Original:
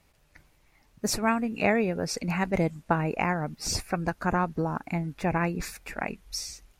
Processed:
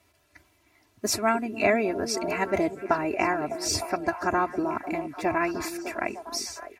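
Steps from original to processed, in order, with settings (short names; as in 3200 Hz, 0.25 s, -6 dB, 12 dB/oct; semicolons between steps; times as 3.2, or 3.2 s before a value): HPF 77 Hz 24 dB/oct; bell 240 Hz -4.5 dB 0.21 oct; comb 3 ms, depth 84%; delay with a stepping band-pass 0.303 s, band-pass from 310 Hz, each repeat 0.7 oct, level -5.5 dB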